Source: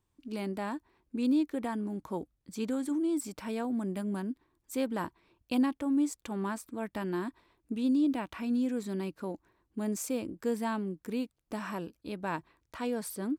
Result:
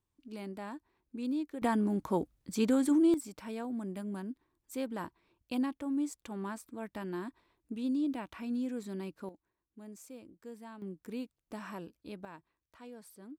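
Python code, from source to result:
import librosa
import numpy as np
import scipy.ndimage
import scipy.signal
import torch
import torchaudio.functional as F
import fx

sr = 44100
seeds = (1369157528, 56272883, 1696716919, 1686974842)

y = fx.gain(x, sr, db=fx.steps((0.0, -7.0), (1.62, 5.0), (3.14, -5.0), (9.29, -16.0), (10.82, -6.0), (12.25, -16.0)))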